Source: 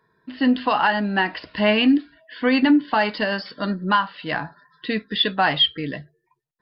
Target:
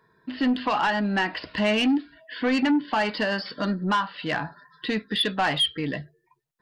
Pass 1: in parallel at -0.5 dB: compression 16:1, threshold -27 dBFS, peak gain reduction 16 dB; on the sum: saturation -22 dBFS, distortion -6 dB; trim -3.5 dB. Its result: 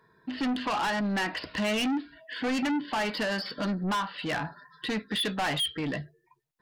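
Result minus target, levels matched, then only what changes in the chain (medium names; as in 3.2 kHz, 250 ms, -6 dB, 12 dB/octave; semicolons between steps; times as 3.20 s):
saturation: distortion +8 dB
change: saturation -13 dBFS, distortion -14 dB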